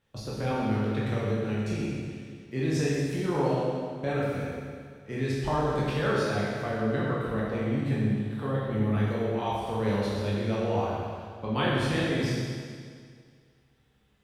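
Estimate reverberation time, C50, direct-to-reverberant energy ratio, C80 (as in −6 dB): 2.0 s, −2.0 dB, −7.0 dB, 0.0 dB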